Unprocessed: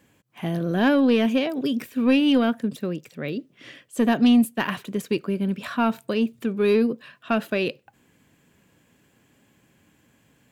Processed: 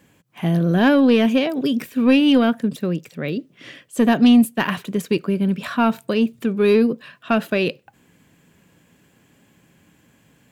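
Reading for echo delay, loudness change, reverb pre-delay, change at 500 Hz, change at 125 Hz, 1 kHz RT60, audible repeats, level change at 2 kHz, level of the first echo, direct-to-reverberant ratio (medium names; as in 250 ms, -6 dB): no echo, +4.5 dB, no reverb, +4.0 dB, +7.0 dB, no reverb, no echo, +4.0 dB, no echo, no reverb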